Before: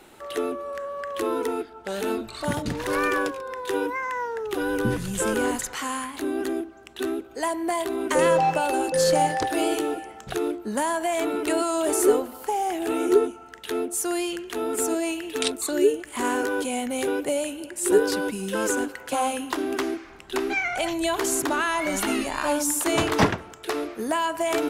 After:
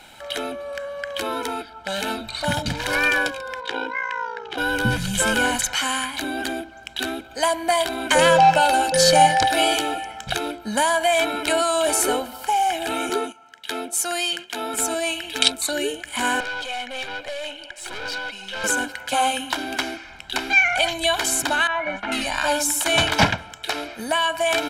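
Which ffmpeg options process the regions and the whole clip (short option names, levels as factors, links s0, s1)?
-filter_complex "[0:a]asettb=1/sr,asplit=3[s0][s1][s2];[s0]atrim=end=3.604[s3];[s1]atrim=start=3.6:end=4.58,asetpts=PTS-STARTPTS,afade=t=in:d=0.004:c=qsin,afade=t=out:st=0.976:d=0.004:c=qsin,highpass=140,lowpass=4400,aeval=exprs='val(0)*sin(2*PI*29*n/s)':c=same[s4];[s2]atrim=start=4.576[s5];[s3][s4]acrossfade=d=0.004:c1=hsin:c2=qsin[s6];[s6][s5]acrossfade=d=0.004:c1=qsin:c2=hsin,asettb=1/sr,asplit=3[s7][s8][s9];[s7]atrim=end=13.094[s10];[s8]atrim=start=13.09:end=14.74,asetpts=PTS-STARTPTS,afade=t=in:d=0.004:c=qsin,afade=t=out:st=1.646:d=0.004:c=qsin,highpass=170,agate=range=0.355:threshold=0.0141:ratio=16:release=100:detection=peak[s11];[s9]atrim=start=14.736[s12];[s10][s11]acrossfade=d=0.004:c1=hsin:c2=qsin[s13];[s13][s12]acrossfade=d=0.004:c1=qsin:c2=hsin,asettb=1/sr,asplit=3[s14][s15][s16];[s14]atrim=end=16.404[s17];[s15]atrim=start=16.4:end=18.64,asetpts=PTS-STARTPTS,afade=t=in:d=0.004:c=qsin,afade=t=out:st=2.236:d=0.004:c=qsin,acrossover=split=370 5400:gain=0.0891 1 0.126[s18][s19][s20];[s18][s19][s20]amix=inputs=3:normalize=0,aphaser=in_gain=1:out_gain=1:delay=1.8:decay=0.3:speed=1.8:type=triangular,aeval=exprs='(tanh(35.5*val(0)+0.35)-tanh(0.35))/35.5':c=same[s21];[s16]atrim=start=18.636[s22];[s17][s21]acrossfade=d=0.004:c1=hsin:c2=qsin[s23];[s23][s22]acrossfade=d=0.004:c1=qsin:c2=hsin,asettb=1/sr,asplit=3[s24][s25][s26];[s24]atrim=end=21.674[s27];[s25]atrim=start=21.67:end=22.12,asetpts=PTS-STARTPTS,afade=t=in:d=0.004:c=qsin,afade=t=out:st=0.446:d=0.004:c=qsin,lowpass=1700,lowshelf=f=210:g=-6.5,agate=range=0.0224:threshold=0.0447:ratio=3:release=100:detection=peak[s28];[s26]atrim=start=22.116[s29];[s27][s28]acrossfade=d=0.004:c1=hsin:c2=qsin[s30];[s30][s29]acrossfade=d=0.004:c1=qsin:c2=hsin,equalizer=f=3300:w=0.62:g=9,aecho=1:1:1.3:0.71,dynaudnorm=f=570:g=17:m=1.58"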